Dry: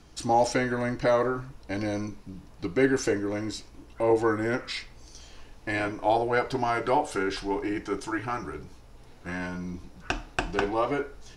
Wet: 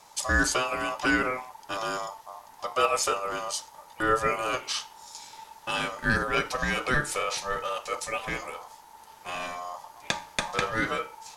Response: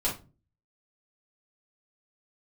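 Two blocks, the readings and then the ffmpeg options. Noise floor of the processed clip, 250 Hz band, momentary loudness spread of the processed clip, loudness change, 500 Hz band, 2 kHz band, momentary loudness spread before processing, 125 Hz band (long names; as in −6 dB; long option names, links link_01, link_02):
−52 dBFS, −6.0 dB, 18 LU, −0.5 dB, −5.0 dB, +5.0 dB, 14 LU, −3.0 dB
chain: -af "aeval=exprs='val(0)*sin(2*PI*890*n/s)':channel_layout=same,crystalizer=i=3:c=0"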